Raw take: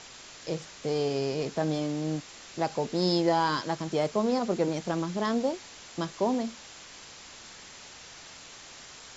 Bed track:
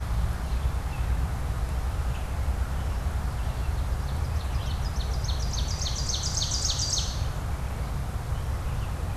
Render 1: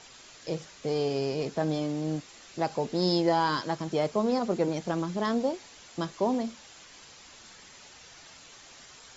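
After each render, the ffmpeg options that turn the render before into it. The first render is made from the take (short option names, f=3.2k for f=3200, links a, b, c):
-af "afftdn=nr=6:nf=-48"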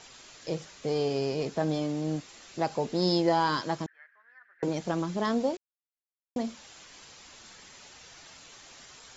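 -filter_complex "[0:a]asettb=1/sr,asplit=3[a][b][c];[a]atrim=end=3.864[d];[b]atrim=start=3.86:end=4.63,asetpts=PTS-STARTPTS,afade=t=in:d=0.004:c=qsin,afade=t=out:st=0.766:d=0.004:c=qsin,asuperpass=centerf=1700:order=4:qfactor=5.5[e];[c]atrim=start=4.626[f];[d][e]acrossfade=d=0.004:c1=hsin:c2=qsin[g];[g][f]acrossfade=d=0.004:c1=qsin:c2=hsin,asplit=3[h][i][j];[h]atrim=end=5.57,asetpts=PTS-STARTPTS,afade=t=out:st=5.566:d=0.004:c=hsin[k];[i]atrim=start=5.57:end=6.36,asetpts=PTS-STARTPTS,volume=0[l];[j]atrim=start=6.36,asetpts=PTS-STARTPTS,afade=t=in:d=0.004:c=hsin[m];[k][l][m]concat=n=3:v=0:a=1"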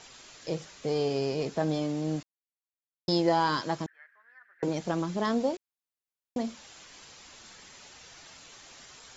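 -filter_complex "[0:a]asplit=3[a][b][c];[a]atrim=end=2.23,asetpts=PTS-STARTPTS,afade=t=out:st=2.226:d=0.004:c=hsin[d];[b]atrim=start=2.23:end=3.08,asetpts=PTS-STARTPTS,volume=0[e];[c]atrim=start=3.08,asetpts=PTS-STARTPTS,afade=t=in:d=0.004:c=hsin[f];[d][e][f]concat=n=3:v=0:a=1"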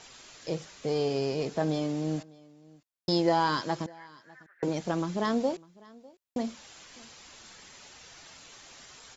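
-af "aecho=1:1:601:0.0631"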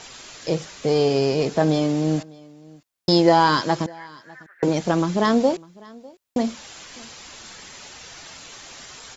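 -af "volume=9.5dB"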